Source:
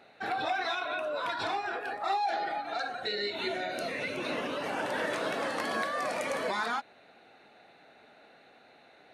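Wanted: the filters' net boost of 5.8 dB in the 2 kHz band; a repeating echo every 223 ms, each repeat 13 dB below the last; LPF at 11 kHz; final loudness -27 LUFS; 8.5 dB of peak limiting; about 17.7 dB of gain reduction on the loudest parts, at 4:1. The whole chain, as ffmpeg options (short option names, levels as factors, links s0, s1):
-af "lowpass=11000,equalizer=f=2000:t=o:g=7.5,acompressor=threshold=0.00447:ratio=4,alimiter=level_in=5.62:limit=0.0631:level=0:latency=1,volume=0.178,aecho=1:1:223|446|669:0.224|0.0493|0.0108,volume=11.2"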